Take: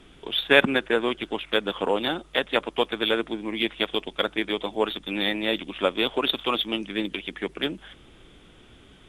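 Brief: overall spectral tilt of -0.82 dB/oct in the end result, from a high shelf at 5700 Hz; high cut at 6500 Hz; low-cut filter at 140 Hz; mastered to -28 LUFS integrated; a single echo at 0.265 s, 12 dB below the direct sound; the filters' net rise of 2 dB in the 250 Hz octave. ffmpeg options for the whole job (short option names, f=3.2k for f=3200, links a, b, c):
-af "highpass=140,lowpass=6.5k,equalizer=f=250:t=o:g=3,highshelf=f=5.7k:g=7,aecho=1:1:265:0.251,volume=-4dB"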